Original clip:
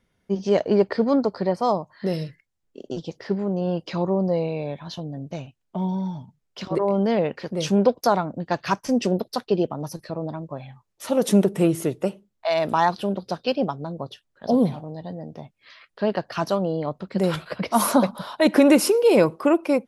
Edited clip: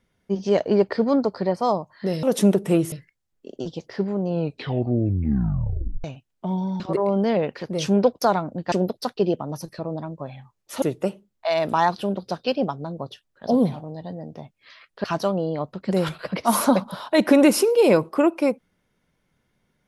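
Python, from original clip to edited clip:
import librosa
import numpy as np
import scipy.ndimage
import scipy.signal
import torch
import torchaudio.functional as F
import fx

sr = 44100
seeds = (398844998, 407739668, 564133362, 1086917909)

y = fx.edit(x, sr, fx.tape_stop(start_s=3.58, length_s=1.77),
    fx.cut(start_s=6.11, length_s=0.51),
    fx.cut(start_s=8.54, length_s=0.49),
    fx.move(start_s=11.13, length_s=0.69, to_s=2.23),
    fx.cut(start_s=16.04, length_s=0.27), tone=tone)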